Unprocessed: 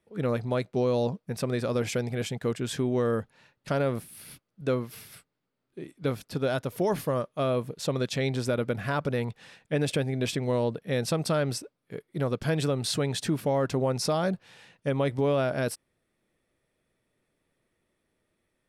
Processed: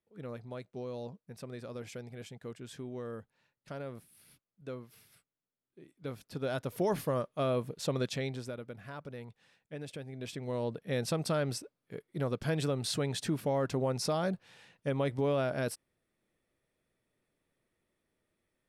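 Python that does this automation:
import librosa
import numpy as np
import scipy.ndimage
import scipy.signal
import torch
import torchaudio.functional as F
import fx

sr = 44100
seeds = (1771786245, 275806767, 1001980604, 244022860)

y = fx.gain(x, sr, db=fx.line((5.8, -15.0), (6.74, -4.0), (8.06, -4.0), (8.63, -16.0), (10.02, -16.0), (10.82, -5.0)))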